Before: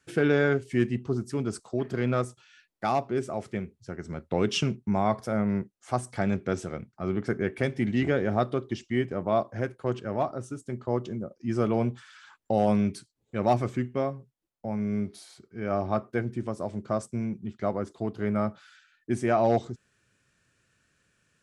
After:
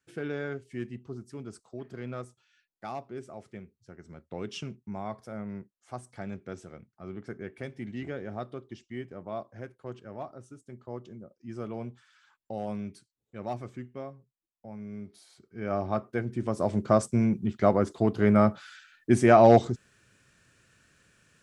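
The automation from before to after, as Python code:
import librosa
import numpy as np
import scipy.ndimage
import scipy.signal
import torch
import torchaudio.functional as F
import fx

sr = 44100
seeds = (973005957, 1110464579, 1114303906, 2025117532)

y = fx.gain(x, sr, db=fx.line((15.01, -11.5), (15.62, -2.0), (16.25, -2.0), (16.7, 6.5)))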